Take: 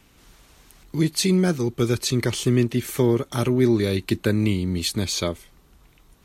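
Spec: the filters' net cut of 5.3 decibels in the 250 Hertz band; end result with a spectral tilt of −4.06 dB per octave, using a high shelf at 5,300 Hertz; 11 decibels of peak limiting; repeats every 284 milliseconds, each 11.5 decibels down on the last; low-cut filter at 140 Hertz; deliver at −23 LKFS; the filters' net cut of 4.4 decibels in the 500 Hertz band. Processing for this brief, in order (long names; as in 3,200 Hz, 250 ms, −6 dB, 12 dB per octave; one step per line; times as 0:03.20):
high-pass filter 140 Hz
parametric band 250 Hz −5.5 dB
parametric band 500 Hz −3.5 dB
high-shelf EQ 5,300 Hz +6 dB
brickwall limiter −17 dBFS
repeating echo 284 ms, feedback 27%, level −11.5 dB
level +4.5 dB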